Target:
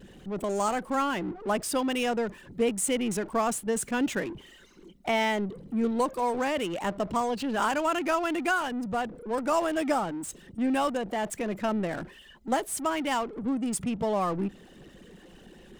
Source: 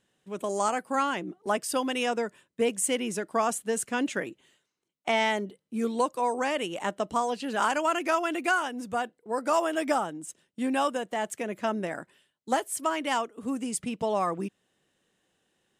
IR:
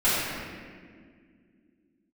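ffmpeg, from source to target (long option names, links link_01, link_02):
-af "aeval=exprs='val(0)+0.5*0.02*sgn(val(0))':channel_layout=same,anlmdn=2.51,lowshelf=frequency=210:gain=8,volume=-2.5dB"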